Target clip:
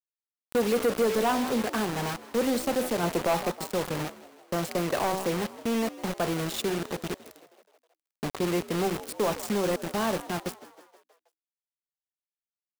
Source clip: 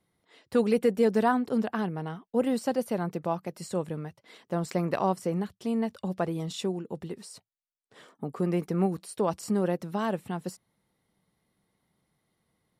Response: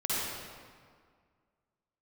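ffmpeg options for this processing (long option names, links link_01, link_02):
-filter_complex "[0:a]bandreject=frequency=5700:width=22,bandreject=frequency=63.28:width_type=h:width=4,bandreject=frequency=126.56:width_type=h:width=4,bandreject=frequency=189.84:width_type=h:width=4,bandreject=frequency=253.12:width_type=h:width=4,bandreject=frequency=316.4:width_type=h:width=4,bandreject=frequency=379.68:width_type=h:width=4,bandreject=frequency=442.96:width_type=h:width=4,bandreject=frequency=506.24:width_type=h:width=4,bandreject=frequency=569.52:width_type=h:width=4,bandreject=frequency=632.8:width_type=h:width=4,bandreject=frequency=696.08:width_type=h:width=4,bandreject=frequency=759.36:width_type=h:width=4,bandreject=frequency=822.64:width_type=h:width=4,bandreject=frequency=885.92:width_type=h:width=4,bandreject=frequency=949.2:width_type=h:width=4,bandreject=frequency=1012.48:width_type=h:width=4,bandreject=frequency=1075.76:width_type=h:width=4,bandreject=frequency=1139.04:width_type=h:width=4,asettb=1/sr,asplit=3[link_01][link_02][link_03];[link_01]atrim=end=3.034[link_04];[link_02]atrim=start=3.03:end=3.53,asetpts=PTS-STARTPTS,afade=type=in:duration=0.004:curve=qsin,afade=type=out:start_time=0.496:duration=0.004:curve=qsin,acontrast=81[link_05];[link_03]atrim=start=3.526[link_06];[link_04][link_05]acrossfade=duration=0.004:curve1=hsin:curve2=qsin[link_07];[link_07][link_06]acrossfade=duration=0.004:curve1=qsin:curve2=hsin,adynamicequalizer=threshold=0.00562:dfrequency=190:dqfactor=5.7:tfrequency=190:tqfactor=5.7:attack=5:release=100:ratio=0.375:range=1.5:mode=cutabove:tftype=bell,acrossover=split=250[link_08][link_09];[link_08]acompressor=threshold=-38dB:ratio=10[link_10];[link_10][link_09]amix=inputs=2:normalize=0,acrusher=bits=5:mix=0:aa=0.000001,asplit=6[link_11][link_12][link_13][link_14][link_15][link_16];[link_12]adelay=159,afreqshift=63,volume=-19dB[link_17];[link_13]adelay=318,afreqshift=126,volume=-23.7dB[link_18];[link_14]adelay=477,afreqshift=189,volume=-28.5dB[link_19];[link_15]adelay=636,afreqshift=252,volume=-33.2dB[link_20];[link_16]adelay=795,afreqshift=315,volume=-37.9dB[link_21];[link_11][link_17][link_18][link_19][link_20][link_21]amix=inputs=6:normalize=0,asoftclip=type=tanh:threshold=-23.5dB,volume=4.5dB"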